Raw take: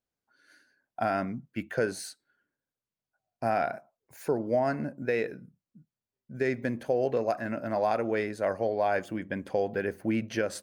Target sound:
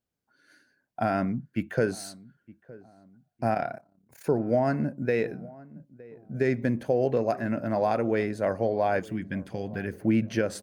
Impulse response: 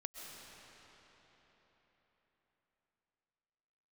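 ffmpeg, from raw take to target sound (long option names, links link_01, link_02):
-filter_complex "[0:a]asettb=1/sr,asplit=3[link_01][link_02][link_03];[link_01]atrim=end=9.004[link_04];[link_02]atrim=start=9:end=9.93,asetpts=PTS-STARTPTS,afade=type=in:duration=0.004:curve=qsin,afade=type=out:start_time=0.926:duration=0.004:curve=qsin,equalizer=frequency=580:width_type=o:width=1.3:gain=-13.5[link_05];[link_03]atrim=start=9.926[link_06];[link_04][link_05]acrossfade=duration=0.004:curve1=hsin:curve2=qsin[link_07];[link_07][link_06]acrossfade=duration=0.004:curve1=qsin:curve2=hsin,asplit=2[link_08][link_09];[link_09]adelay=914,lowpass=frequency=1000:poles=1,volume=-20.5dB,asplit=2[link_10][link_11];[link_11]adelay=914,lowpass=frequency=1000:poles=1,volume=0.45,asplit=2[link_12][link_13];[link_13]adelay=914,lowpass=frequency=1000:poles=1,volume=0.45[link_14];[link_08][link_10][link_12][link_14]amix=inputs=4:normalize=0,asettb=1/sr,asplit=3[link_15][link_16][link_17];[link_15]atrim=end=3.544[link_18];[link_16]atrim=start=3.54:end=4.25,asetpts=PTS-STARTPTS,afade=type=in:duration=0.004:curve=qsin,afade=type=out:start_time=0.706:duration=0.004:curve=qsin,tremolo=f=34:d=0.788[link_19];[link_17]atrim=start=4.246[link_20];[link_18][link_19]acrossfade=duration=0.004:curve1=hsin:curve2=qsin[link_21];[link_21][link_20]acrossfade=duration=0.004:curve1=qsin:curve2=hsin,equalizer=frequency=130:width_type=o:width=2.7:gain=7.5"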